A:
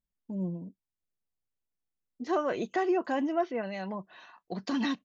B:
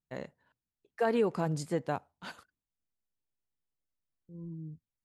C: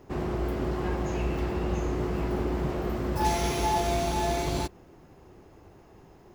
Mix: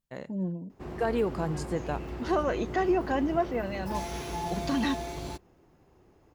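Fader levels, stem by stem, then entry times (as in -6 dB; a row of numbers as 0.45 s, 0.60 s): +1.5 dB, 0.0 dB, -8.5 dB; 0.00 s, 0.00 s, 0.70 s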